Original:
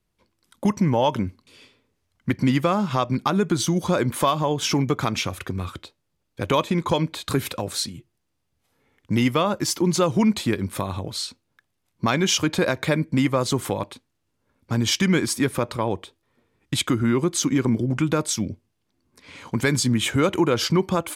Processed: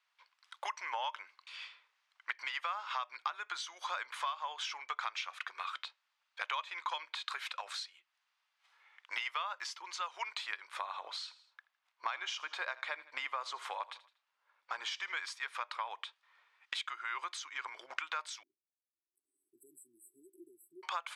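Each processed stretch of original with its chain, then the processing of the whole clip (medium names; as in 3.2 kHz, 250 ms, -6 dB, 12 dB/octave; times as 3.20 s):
10.67–15.17 s: tilt shelf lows +6 dB, about 730 Hz + feedback delay 80 ms, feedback 38%, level -20.5 dB
18.43–20.83 s: brick-wall FIR band-stop 400–7700 Hz + high-order bell 6.5 kHz -13.5 dB 1.3 oct
whole clip: inverse Chebyshev high-pass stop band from 220 Hz, stop band 70 dB; compression 5:1, threshold -42 dBFS; low-pass 3.8 kHz 12 dB/octave; trim +6 dB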